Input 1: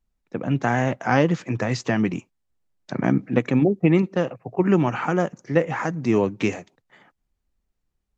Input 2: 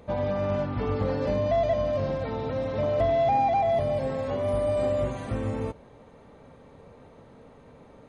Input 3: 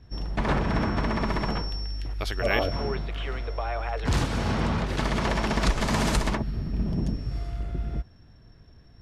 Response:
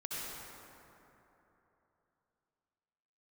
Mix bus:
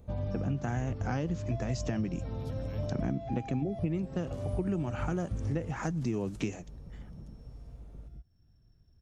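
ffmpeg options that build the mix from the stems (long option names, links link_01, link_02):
-filter_complex "[0:a]volume=2.5dB[link_01];[1:a]lowshelf=frequency=81:gain=11.5,volume=-3dB[link_02];[2:a]acompressor=threshold=-39dB:ratio=2,adelay=200,volume=-10.5dB[link_03];[link_01][link_02][link_03]amix=inputs=3:normalize=0,equalizer=frequency=250:width_type=o:width=1:gain=-4,equalizer=frequency=500:width_type=o:width=1:gain=-7,equalizer=frequency=1000:width_type=o:width=1:gain=-9,equalizer=frequency=2000:width_type=o:width=1:gain=-10,equalizer=frequency=4000:width_type=o:width=1:gain=-6,acompressor=threshold=-29dB:ratio=6"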